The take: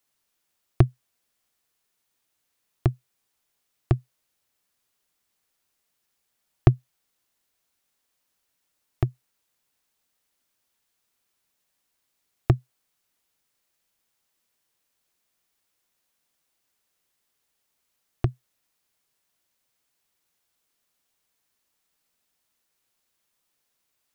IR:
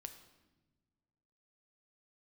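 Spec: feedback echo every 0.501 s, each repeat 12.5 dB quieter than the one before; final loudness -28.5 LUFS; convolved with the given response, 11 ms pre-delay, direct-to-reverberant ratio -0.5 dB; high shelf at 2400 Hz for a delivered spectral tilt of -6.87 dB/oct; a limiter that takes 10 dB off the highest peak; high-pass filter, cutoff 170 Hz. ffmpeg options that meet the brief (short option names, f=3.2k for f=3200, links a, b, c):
-filter_complex "[0:a]highpass=170,highshelf=f=2.4k:g=3.5,alimiter=limit=-14dB:level=0:latency=1,aecho=1:1:501|1002|1503:0.237|0.0569|0.0137,asplit=2[a][b];[1:a]atrim=start_sample=2205,adelay=11[c];[b][c]afir=irnorm=-1:irlink=0,volume=5.5dB[d];[a][d]amix=inputs=2:normalize=0,volume=10dB"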